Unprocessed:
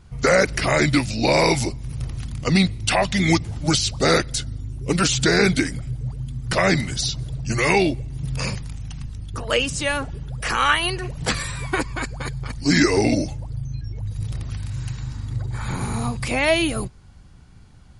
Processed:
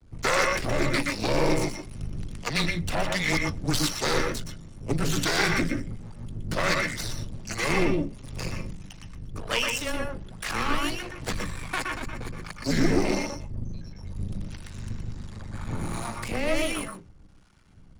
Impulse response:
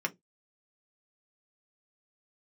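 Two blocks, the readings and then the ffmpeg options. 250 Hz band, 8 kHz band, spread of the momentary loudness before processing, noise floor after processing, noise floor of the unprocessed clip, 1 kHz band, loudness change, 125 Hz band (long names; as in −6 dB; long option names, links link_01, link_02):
−7.0 dB, −6.5 dB, 13 LU, −49 dBFS, −46 dBFS, −6.0 dB, −6.5 dB, −8.0 dB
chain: -filter_complex "[0:a]aeval=exprs='max(val(0),0)':channel_layout=same,acrossover=split=640[link_01][link_02];[link_01]aeval=exprs='val(0)*(1-0.7/2+0.7/2*cos(2*PI*1.4*n/s))':channel_layout=same[link_03];[link_02]aeval=exprs='val(0)*(1-0.7/2-0.7/2*cos(2*PI*1.4*n/s))':channel_layout=same[link_04];[link_03][link_04]amix=inputs=2:normalize=0,afreqshift=-15,asplit=2[link_05][link_06];[1:a]atrim=start_sample=2205,adelay=119[link_07];[link_06][link_07]afir=irnorm=-1:irlink=0,volume=-7.5dB[link_08];[link_05][link_08]amix=inputs=2:normalize=0"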